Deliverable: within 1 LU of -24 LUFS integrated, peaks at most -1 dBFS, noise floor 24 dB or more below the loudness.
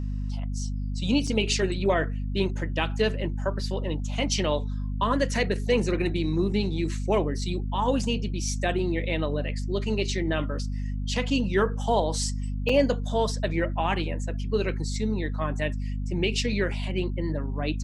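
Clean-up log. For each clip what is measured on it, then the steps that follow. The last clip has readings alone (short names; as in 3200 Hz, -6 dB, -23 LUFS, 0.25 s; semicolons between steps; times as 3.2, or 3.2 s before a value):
dropouts 2; longest dropout 4.3 ms; hum 50 Hz; harmonics up to 250 Hz; hum level -27 dBFS; loudness -27.5 LUFS; peak -9.5 dBFS; loudness target -24.0 LUFS
-> interpolate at 1.27/12.69, 4.3 ms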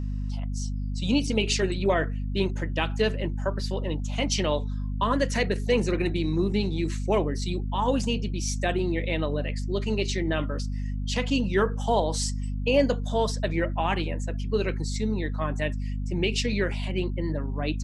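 dropouts 0; hum 50 Hz; harmonics up to 250 Hz; hum level -27 dBFS
-> notches 50/100/150/200/250 Hz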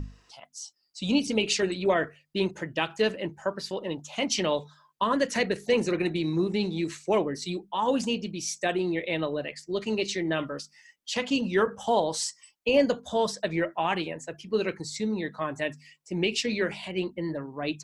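hum none; loudness -28.5 LUFS; peak -11.0 dBFS; loudness target -24.0 LUFS
-> gain +4.5 dB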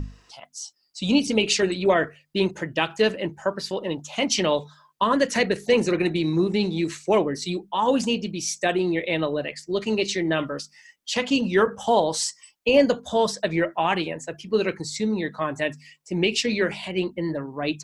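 loudness -24.0 LUFS; peak -6.5 dBFS; noise floor -62 dBFS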